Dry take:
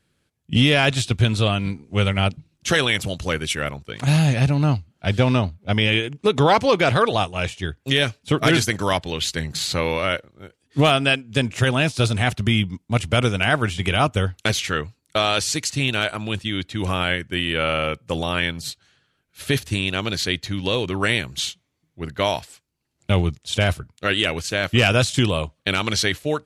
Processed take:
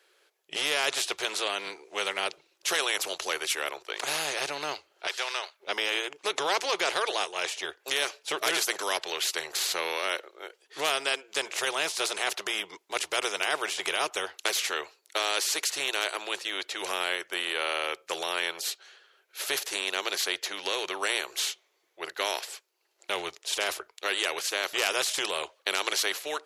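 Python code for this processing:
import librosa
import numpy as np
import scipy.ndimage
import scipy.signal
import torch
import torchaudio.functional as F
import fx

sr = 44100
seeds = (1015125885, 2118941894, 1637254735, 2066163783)

y = fx.highpass(x, sr, hz=1200.0, slope=12, at=(5.07, 5.6))
y = scipy.signal.sosfilt(scipy.signal.ellip(4, 1.0, 40, 380.0, 'highpass', fs=sr, output='sos'), y)
y = fx.peak_eq(y, sr, hz=8800.0, db=-6.5, octaves=0.32)
y = fx.spectral_comp(y, sr, ratio=2.0)
y = y * 10.0 ** (-4.5 / 20.0)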